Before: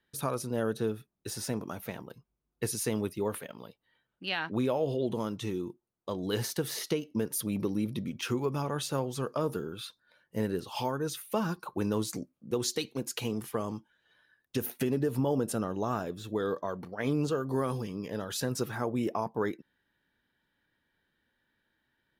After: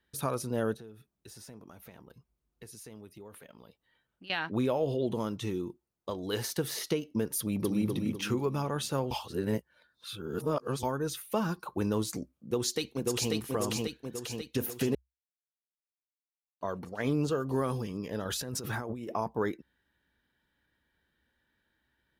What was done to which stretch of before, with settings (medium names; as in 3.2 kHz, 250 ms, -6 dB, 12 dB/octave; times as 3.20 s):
0.74–4.30 s: compression 3:1, threshold -51 dBFS
6.10–6.52 s: peaking EQ 150 Hz -6 dB 1.8 oct
7.39–7.88 s: echo throw 250 ms, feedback 40%, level -4 dB
9.11–10.83 s: reverse
12.33–13.33 s: echo throw 540 ms, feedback 60%, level -1.5 dB
14.95–16.61 s: mute
18.25–19.15 s: compressor with a negative ratio -37 dBFS
whole clip: peaking EQ 64 Hz +12.5 dB 0.43 oct